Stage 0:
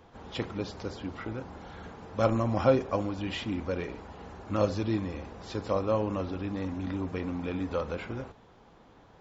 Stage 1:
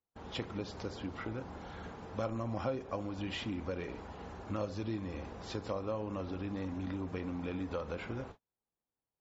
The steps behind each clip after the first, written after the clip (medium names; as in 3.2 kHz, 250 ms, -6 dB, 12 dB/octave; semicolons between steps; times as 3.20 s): gate -47 dBFS, range -39 dB; compression 3:1, threshold -34 dBFS, peak gain reduction 13 dB; trim -1.5 dB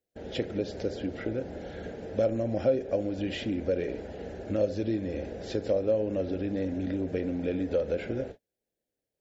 FFT filter 150 Hz 0 dB, 590 Hz +9 dB, 1.1 kHz -19 dB, 1.6 kHz +1 dB, 2.4 kHz -1 dB; trim +4 dB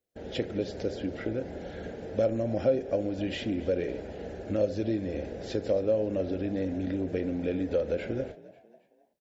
frequency-shifting echo 271 ms, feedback 44%, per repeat +53 Hz, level -19.5 dB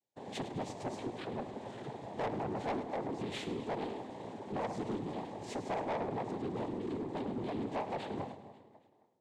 noise-vocoded speech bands 6; saturation -27 dBFS, distortion -9 dB; two-band feedback delay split 520 Hz, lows 136 ms, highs 104 ms, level -13 dB; trim -4.5 dB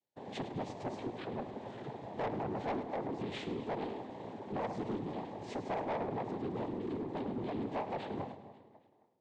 distance through air 97 m